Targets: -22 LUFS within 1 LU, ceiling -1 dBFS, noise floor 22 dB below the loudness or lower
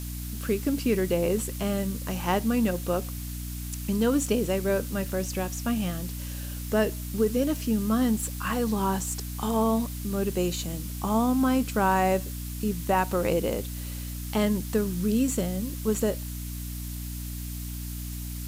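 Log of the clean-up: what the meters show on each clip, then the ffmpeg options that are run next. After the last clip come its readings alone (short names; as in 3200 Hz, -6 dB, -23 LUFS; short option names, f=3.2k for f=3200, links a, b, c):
hum 60 Hz; harmonics up to 300 Hz; hum level -33 dBFS; noise floor -35 dBFS; noise floor target -50 dBFS; loudness -28.0 LUFS; peak -11.5 dBFS; loudness target -22.0 LUFS
-> -af "bandreject=f=60:t=h:w=6,bandreject=f=120:t=h:w=6,bandreject=f=180:t=h:w=6,bandreject=f=240:t=h:w=6,bandreject=f=300:t=h:w=6"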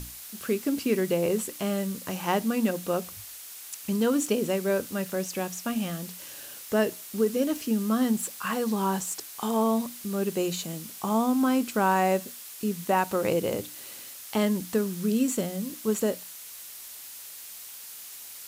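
hum none; noise floor -43 dBFS; noise floor target -50 dBFS
-> -af "afftdn=nr=7:nf=-43"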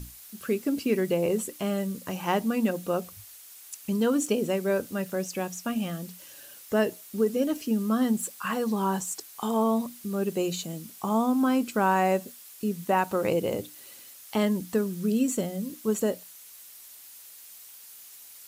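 noise floor -48 dBFS; noise floor target -50 dBFS
-> -af "afftdn=nr=6:nf=-48"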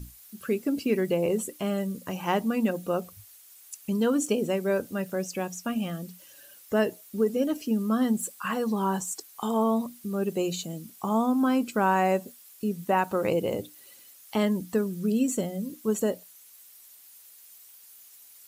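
noise floor -52 dBFS; loudness -28.0 LUFS; peak -12.5 dBFS; loudness target -22.0 LUFS
-> -af "volume=6dB"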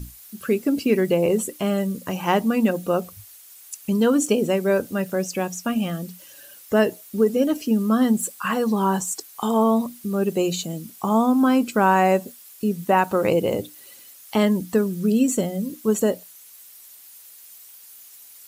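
loudness -22.0 LUFS; peak -6.5 dBFS; noise floor -46 dBFS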